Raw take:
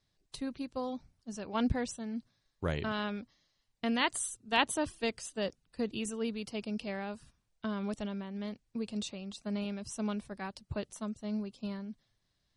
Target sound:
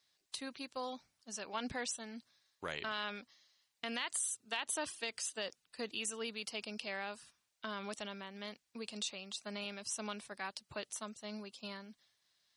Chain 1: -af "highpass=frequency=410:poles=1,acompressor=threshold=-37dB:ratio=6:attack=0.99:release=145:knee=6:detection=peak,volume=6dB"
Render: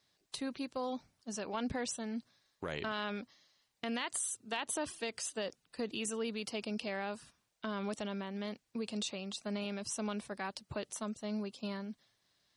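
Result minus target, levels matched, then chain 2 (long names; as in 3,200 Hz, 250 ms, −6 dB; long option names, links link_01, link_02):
500 Hz band +3.0 dB
-af "highpass=frequency=1600:poles=1,acompressor=threshold=-37dB:ratio=6:attack=0.99:release=145:knee=6:detection=peak,volume=6dB"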